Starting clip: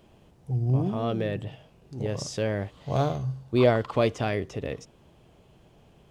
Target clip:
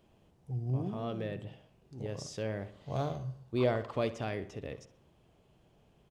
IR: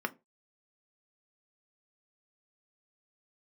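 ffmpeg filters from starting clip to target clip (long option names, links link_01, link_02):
-filter_complex "[0:a]asplit=2[link_01][link_02];[link_02]adelay=64,lowpass=frequency=4000:poles=1,volume=-14dB,asplit=2[link_03][link_04];[link_04]adelay=64,lowpass=frequency=4000:poles=1,volume=0.52,asplit=2[link_05][link_06];[link_06]adelay=64,lowpass=frequency=4000:poles=1,volume=0.52,asplit=2[link_07][link_08];[link_08]adelay=64,lowpass=frequency=4000:poles=1,volume=0.52,asplit=2[link_09][link_10];[link_10]adelay=64,lowpass=frequency=4000:poles=1,volume=0.52[link_11];[link_01][link_03][link_05][link_07][link_09][link_11]amix=inputs=6:normalize=0,volume=-9dB"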